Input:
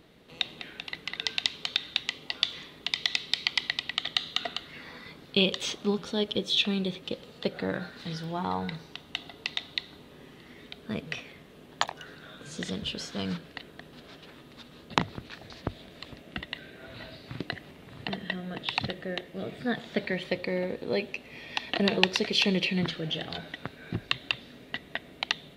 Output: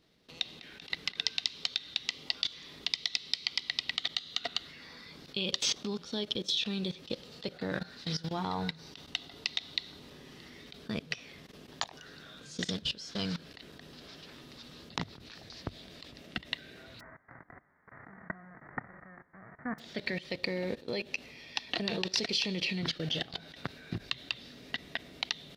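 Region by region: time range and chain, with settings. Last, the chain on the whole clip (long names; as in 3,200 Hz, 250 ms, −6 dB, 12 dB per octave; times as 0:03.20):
0:16.99–0:19.78: spectral envelope flattened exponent 0.1 + Butterworth low-pass 2,000 Hz 96 dB per octave + one half of a high-frequency compander encoder only
whole clip: parametric band 620 Hz −2 dB 2.1 octaves; output level in coarse steps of 18 dB; parametric band 5,200 Hz +10.5 dB 0.71 octaves; level +2 dB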